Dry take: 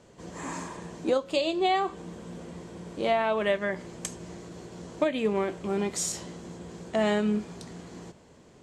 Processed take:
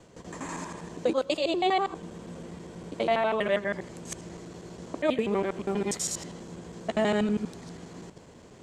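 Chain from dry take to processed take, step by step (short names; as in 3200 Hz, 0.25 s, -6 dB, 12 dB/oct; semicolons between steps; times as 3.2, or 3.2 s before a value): local time reversal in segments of 81 ms; reverse; upward compressor, threshold -44 dBFS; reverse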